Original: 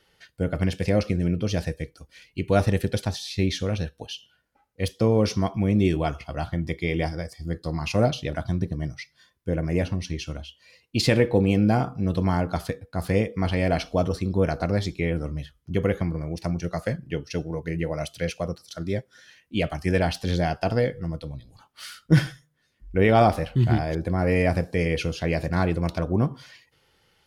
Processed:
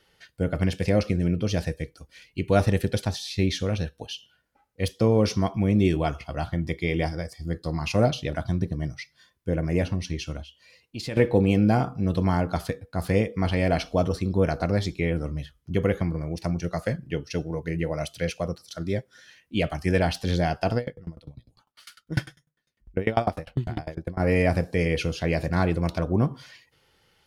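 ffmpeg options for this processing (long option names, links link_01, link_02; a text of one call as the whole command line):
ffmpeg -i in.wav -filter_complex "[0:a]asettb=1/sr,asplit=3[link_01][link_02][link_03];[link_01]atrim=end=10.434[link_04];[link_02]atrim=start=10.43:end=11.17,asetpts=PTS-STARTPTS,afade=type=in:duration=0.004:curve=qsin,afade=type=out:start_time=0.736:duration=0.004:curve=qsin,acompressor=threshold=-51dB:ratio=1.5:attack=3.2:release=140:knee=1:detection=peak[link_05];[link_03]atrim=start=11.166[link_06];[link_04][link_05]acrossfade=duration=0.004:curve1=hsin:curve2=qsin[link_07];[link_07][link_06]acrossfade=duration=0.004:curve1=qsin:curve2=hsin,asettb=1/sr,asplit=3[link_08][link_09][link_10];[link_08]atrim=end=20.774[link_11];[link_09]atrim=start=20.77:end=24.2,asetpts=PTS-STARTPTS,afade=type=in:duration=0.004:curve=qsin,afade=type=out:start_time=3.426:duration=0.004:curve=qsin,aeval=exprs='val(0)*pow(10,-27*if(lt(mod(10*n/s,1),2*abs(10)/1000),1-mod(10*n/s,1)/(2*abs(10)/1000),(mod(10*n/s,1)-2*abs(10)/1000)/(1-2*abs(10)/1000))/20)':channel_layout=same[link_12];[link_10]atrim=start=24.196[link_13];[link_11][link_12]acrossfade=duration=0.004:curve1=hsin:curve2=qsin[link_14];[link_14][link_13]acrossfade=duration=0.004:curve1=qsin:curve2=hsin" out.wav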